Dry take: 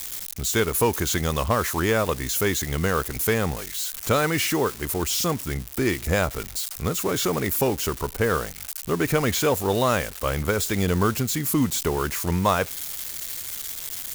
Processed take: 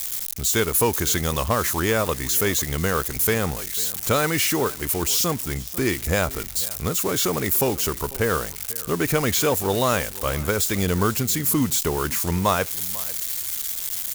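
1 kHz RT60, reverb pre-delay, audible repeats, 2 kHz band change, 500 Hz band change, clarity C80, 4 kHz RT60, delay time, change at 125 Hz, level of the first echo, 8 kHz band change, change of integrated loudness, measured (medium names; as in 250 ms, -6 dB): no reverb, no reverb, 1, +0.5 dB, 0.0 dB, no reverb, no reverb, 495 ms, 0.0 dB, -20.0 dB, +4.0 dB, +2.0 dB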